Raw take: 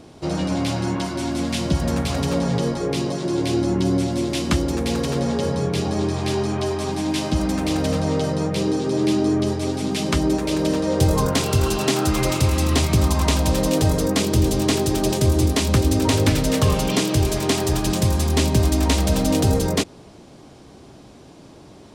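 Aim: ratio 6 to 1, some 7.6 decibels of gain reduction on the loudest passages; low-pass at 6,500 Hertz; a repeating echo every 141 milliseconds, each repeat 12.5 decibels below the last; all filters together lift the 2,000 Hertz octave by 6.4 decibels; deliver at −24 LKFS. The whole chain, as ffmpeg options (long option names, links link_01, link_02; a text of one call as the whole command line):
ffmpeg -i in.wav -af "lowpass=6500,equalizer=frequency=2000:width_type=o:gain=8,acompressor=threshold=-21dB:ratio=6,aecho=1:1:141|282|423:0.237|0.0569|0.0137,volume=1dB" out.wav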